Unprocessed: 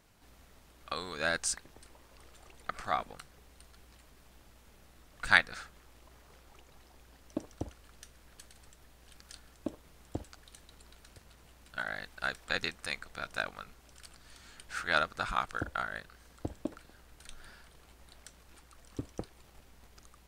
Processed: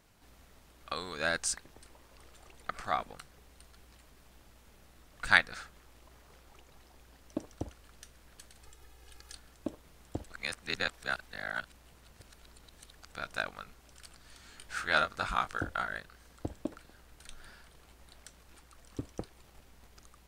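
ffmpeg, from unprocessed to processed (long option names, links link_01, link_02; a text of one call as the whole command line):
ffmpeg -i in.wav -filter_complex "[0:a]asettb=1/sr,asplit=3[link_01][link_02][link_03];[link_01]atrim=end=8.634[link_04];[link_02]atrim=start=8.63:end=9.35,asetpts=PTS-STARTPTS,afade=type=in:duration=0.004:curve=qsin,afade=type=out:start_time=0.716:duration=0.004:curve=qsin,aecho=1:1:2.4:0.65,atrim=end_sample=31752[link_05];[link_03]atrim=start=9.346[link_06];[link_04][link_05]acrossfade=duration=0.004:curve1=hsin:curve2=qsin[link_07];[link_07][link_06]acrossfade=duration=0.004:curve1=qsin:curve2=hsin,asettb=1/sr,asplit=3[link_08][link_09][link_10];[link_08]atrim=end=14.494[link_11];[link_09]atrim=start=14.49:end=15.98,asetpts=PTS-STARTPTS,afade=type=in:duration=0.004:curve=qsin,afade=type=out:start_time=1.486:duration=0.004:curve=qsin,asplit=2[link_12][link_13];[link_13]adelay=21,volume=-6.5dB[link_14];[link_12][link_14]amix=inputs=2:normalize=0,atrim=end_sample=65709[link_15];[link_10]atrim=start=15.976[link_16];[link_11][link_15]acrossfade=duration=0.004:curve1=hsin:curve2=qsin[link_17];[link_17][link_16]acrossfade=duration=0.004:curve1=qsin:curve2=hsin,asplit=3[link_18][link_19][link_20];[link_18]atrim=end=10.262[link_21];[link_19]atrim=start=10.258:end=13.122,asetpts=PTS-STARTPTS,areverse[link_22];[link_20]atrim=start=13.118[link_23];[link_21][link_22]acrossfade=duration=0.004:curve1=hsin:curve2=hsin[link_24];[link_24][link_23]acrossfade=duration=0.004:curve1=hsin:curve2=hsin" out.wav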